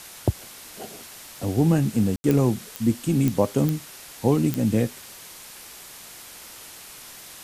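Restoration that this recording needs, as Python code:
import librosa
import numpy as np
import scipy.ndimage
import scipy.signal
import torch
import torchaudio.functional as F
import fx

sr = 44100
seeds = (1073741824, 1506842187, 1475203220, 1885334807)

y = fx.fix_declick_ar(x, sr, threshold=10.0)
y = fx.fix_ambience(y, sr, seeds[0], print_start_s=5.67, print_end_s=6.17, start_s=2.16, end_s=2.24)
y = fx.noise_reduce(y, sr, print_start_s=5.67, print_end_s=6.17, reduce_db=25.0)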